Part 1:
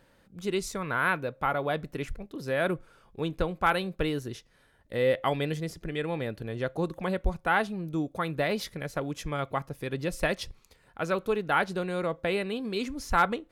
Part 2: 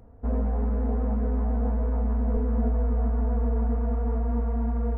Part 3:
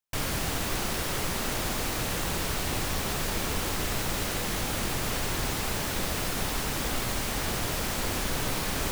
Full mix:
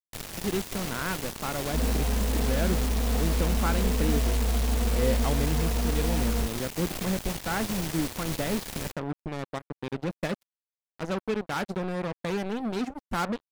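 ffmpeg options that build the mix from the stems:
-filter_complex "[0:a]equalizer=f=210:w=0.72:g=12,volume=-8dB[a];[1:a]adelay=1500,volume=-1.5dB[b];[2:a]equalizer=f=1.3k:t=o:w=0.77:g=-6,volume=-6dB[c];[a][b][c]amix=inputs=3:normalize=0,acrusher=bits=4:mix=0:aa=0.5"

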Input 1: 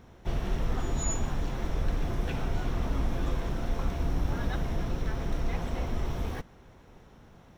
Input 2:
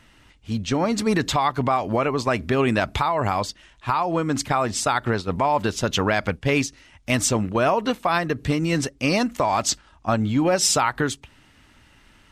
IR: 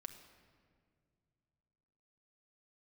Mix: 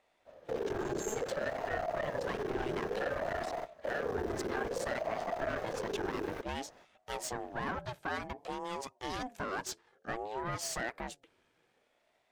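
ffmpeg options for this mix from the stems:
-filter_complex "[0:a]volume=-1dB[a];[1:a]dynaudnorm=f=350:g=9:m=6dB,volume=-16.5dB,asplit=2[b][c];[c]apad=whole_len=333894[d];[a][d]sidechaingate=range=-22dB:threshold=-56dB:ratio=16:detection=peak[e];[e][b]amix=inputs=2:normalize=0,aeval=exprs='(tanh(31.6*val(0)+0.5)-tanh(0.5))/31.6':c=same,equalizer=f=1.2k:t=o:w=0.36:g=8.5,aeval=exprs='val(0)*sin(2*PI*530*n/s+530*0.3/0.57*sin(2*PI*0.57*n/s))':c=same"

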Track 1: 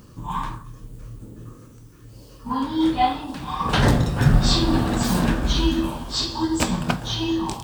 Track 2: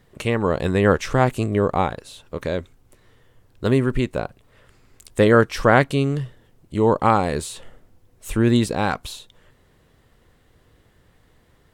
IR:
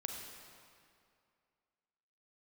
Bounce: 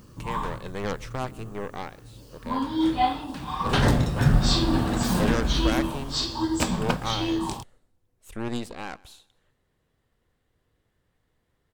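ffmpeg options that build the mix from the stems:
-filter_complex "[0:a]volume=-3dB[a];[1:a]aeval=exprs='0.794*(cos(1*acos(clip(val(0)/0.794,-1,1)))-cos(1*PI/2))+0.158*(cos(6*acos(clip(val(0)/0.794,-1,1)))-cos(6*PI/2))+0.224*(cos(8*acos(clip(val(0)/0.794,-1,1)))-cos(8*PI/2))':c=same,volume=-15dB,asplit=2[b][c];[c]volume=-23.5dB,aecho=0:1:130|260|390|520|650:1|0.37|0.137|0.0507|0.0187[d];[a][b][d]amix=inputs=3:normalize=0"

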